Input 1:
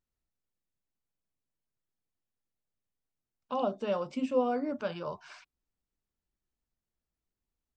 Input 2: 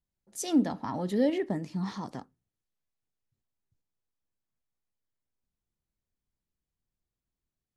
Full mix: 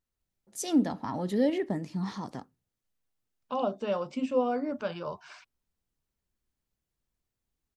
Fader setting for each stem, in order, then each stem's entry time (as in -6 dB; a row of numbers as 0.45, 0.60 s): +1.0, 0.0 dB; 0.00, 0.20 s